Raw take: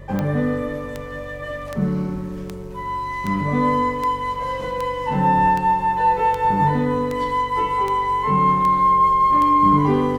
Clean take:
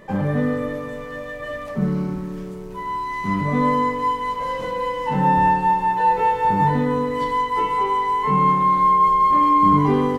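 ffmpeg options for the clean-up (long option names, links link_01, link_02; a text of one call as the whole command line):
ffmpeg -i in.wav -af "adeclick=threshold=4,bandreject=frequency=47.2:width_type=h:width=4,bandreject=frequency=94.4:width_type=h:width=4,bandreject=frequency=141.6:width_type=h:width=4,bandreject=frequency=540:width=30" out.wav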